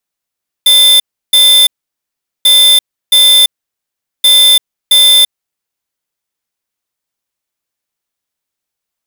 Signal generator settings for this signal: beep pattern square 3.55 kHz, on 0.34 s, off 0.33 s, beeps 2, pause 0.78 s, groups 3, -5.5 dBFS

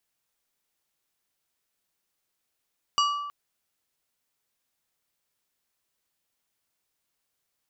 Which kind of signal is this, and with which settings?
glass hit plate, length 0.32 s, lowest mode 1.16 kHz, decay 1.23 s, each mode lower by 4 dB, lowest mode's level -19.5 dB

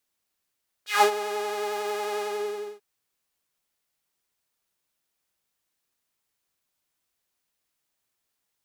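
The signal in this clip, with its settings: synth patch with pulse-width modulation G#4, sub -9 dB, filter highpass, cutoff 350 Hz, Q 2.7, filter envelope 3.5 oct, filter decay 0.17 s, filter sustain 20%, attack 157 ms, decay 0.09 s, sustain -14 dB, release 0.61 s, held 1.33 s, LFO 11 Hz, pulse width 43%, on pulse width 19%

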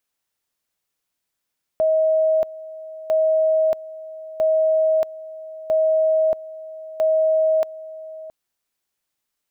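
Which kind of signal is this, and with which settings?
two-level tone 634 Hz -14.5 dBFS, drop 18 dB, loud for 0.63 s, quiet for 0.67 s, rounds 5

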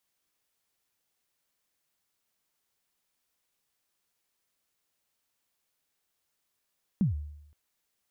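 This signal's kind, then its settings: kick drum length 0.52 s, from 220 Hz, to 74 Hz, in 131 ms, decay 0.81 s, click off, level -19.5 dB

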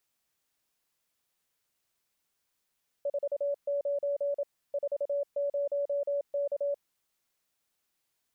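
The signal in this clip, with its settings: Morse "49 40K" 27 wpm 569 Hz -27 dBFS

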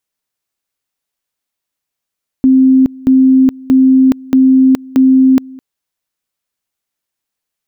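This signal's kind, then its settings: two-level tone 262 Hz -4 dBFS, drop 24 dB, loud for 0.42 s, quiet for 0.21 s, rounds 5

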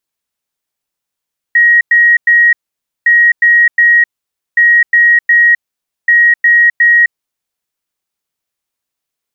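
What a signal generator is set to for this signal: beep pattern sine 1.89 kHz, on 0.26 s, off 0.10 s, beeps 3, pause 0.53 s, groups 4, -4 dBFS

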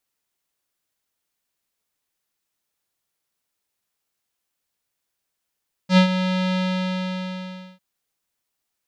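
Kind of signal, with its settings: synth note square F#3 12 dB/octave, low-pass 3.7 kHz, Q 2.2, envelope 0.5 oct, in 0.08 s, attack 82 ms, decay 0.10 s, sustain -10.5 dB, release 1.24 s, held 0.66 s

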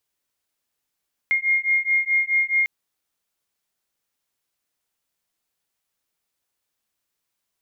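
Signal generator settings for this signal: beating tones 2.13 kHz, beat 4.7 Hz, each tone -21 dBFS 1.35 s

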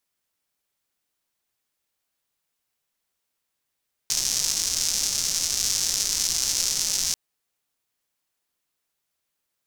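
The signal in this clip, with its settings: rain from filtered ticks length 3.04 s, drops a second 290, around 5.8 kHz, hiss -17 dB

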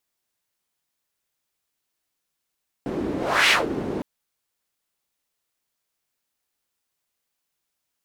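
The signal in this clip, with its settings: whoosh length 1.16 s, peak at 0.64 s, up 0.36 s, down 0.18 s, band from 320 Hz, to 2.5 kHz, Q 2, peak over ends 11 dB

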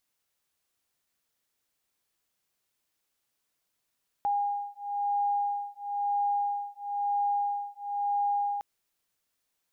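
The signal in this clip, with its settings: beating tones 813 Hz, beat 1 Hz, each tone -30 dBFS 4.36 s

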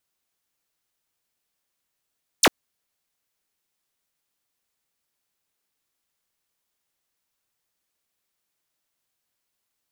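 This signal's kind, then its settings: laser zap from 11 kHz, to 190 Hz, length 0.05 s square, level -14 dB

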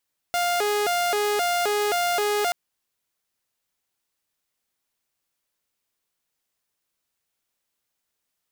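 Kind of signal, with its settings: siren hi-lo 415–702 Hz 1.9 per s saw -18.5 dBFS 2.18 s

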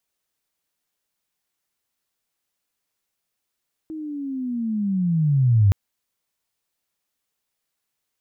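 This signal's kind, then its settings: sweep linear 320 Hz -> 94 Hz -29.5 dBFS -> -11.5 dBFS 1.82 s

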